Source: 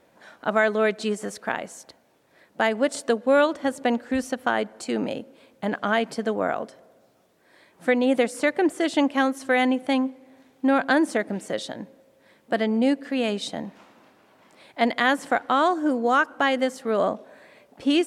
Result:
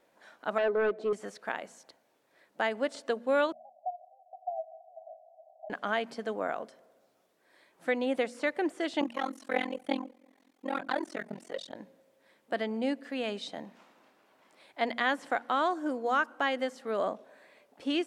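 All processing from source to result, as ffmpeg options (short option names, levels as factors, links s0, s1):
-filter_complex "[0:a]asettb=1/sr,asplit=3[s0][s1][s2];[s0]atrim=end=0.584[s3];[s1]atrim=start=0.58:end=1.13,asetpts=PTS-STARTPTS,afade=t=in:d=0.004:c=qsin,afade=t=out:st=0.546:d=0.004:c=qsin,bandpass=f=440:t=q:w=1.8,aeval=exprs='0.168*sin(PI/2*2*val(0)/0.168)':c=same[s4];[s2]atrim=start=1.126[s5];[s3][s4]acrossfade=d=0.004:c1=hsin:c2=qsin[s6];[s6][s5]acrossfade=d=0.004:c1=qsin:c2=hsin,asettb=1/sr,asplit=3[s7][s8][s9];[s7]atrim=end=3.524[s10];[s8]atrim=start=3.52:end=5.7,asetpts=PTS-STARTPTS,afade=t=in:d=0.004:c=qsin,afade=t=out:st=2.176:d=0.004:c=qsin,aeval=exprs='val(0)+0.5*0.0316*sgn(val(0))':c=same,asuperpass=centerf=690:order=8:qfactor=4.9[s11];[s9]atrim=start=5.696[s12];[s10][s11]acrossfade=d=0.004:c1=hsin:c2=qsin[s13];[s13][s12]acrossfade=d=0.004:c1=qsin:c2=hsin,asettb=1/sr,asplit=3[s14][s15][s16];[s14]atrim=end=9.014[s17];[s15]atrim=start=9.01:end=11.76,asetpts=PTS-STARTPTS,afade=t=in:d=0.004:c=qsin,afade=t=out:st=2.746:d=0.004:c=qsin,bandreject=f=1600:w=22,aphaser=in_gain=1:out_gain=1:delay=5:decay=0.59:speed=1.1:type=triangular,tremolo=f=43:d=1[s18];[s16]atrim=start=11.756[s19];[s17][s18]acrossfade=d=0.004:c1=hsin:c2=qsin[s20];[s20][s19]acrossfade=d=0.004:c1=qsin:c2=hsin,bandreject=f=58.58:t=h:w=4,bandreject=f=117.16:t=h:w=4,bandreject=f=175.74:t=h:w=4,bandreject=f=234.32:t=h:w=4,acrossover=split=5700[s21][s22];[s22]acompressor=threshold=0.00251:ratio=4:attack=1:release=60[s23];[s21][s23]amix=inputs=2:normalize=0,equalizer=f=73:t=o:w=2.7:g=-11.5,volume=0.447"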